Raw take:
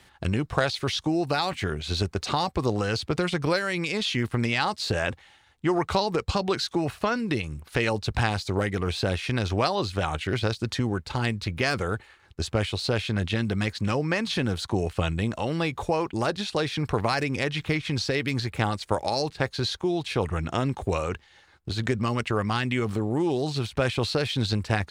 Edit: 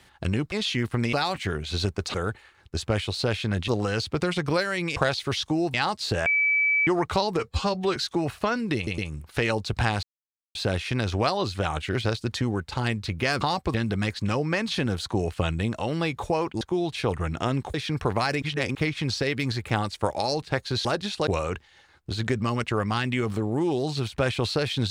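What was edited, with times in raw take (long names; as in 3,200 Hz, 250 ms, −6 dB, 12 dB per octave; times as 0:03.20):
0:00.52–0:01.30: swap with 0:03.92–0:04.53
0:02.31–0:02.64: swap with 0:11.79–0:13.33
0:05.05–0:05.66: beep over 2,300 Hz −19 dBFS
0:06.18–0:06.56: time-stretch 1.5×
0:07.36: stutter 0.11 s, 3 plays
0:08.41–0:08.93: silence
0:16.20–0:16.62: swap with 0:19.73–0:20.86
0:17.30–0:17.63: reverse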